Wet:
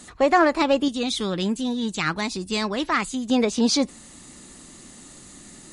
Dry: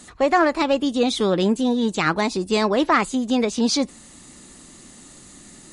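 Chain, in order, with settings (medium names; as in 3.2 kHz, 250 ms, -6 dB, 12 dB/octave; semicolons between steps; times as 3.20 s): 0.88–3.30 s: peaking EQ 540 Hz -9.5 dB 2.4 oct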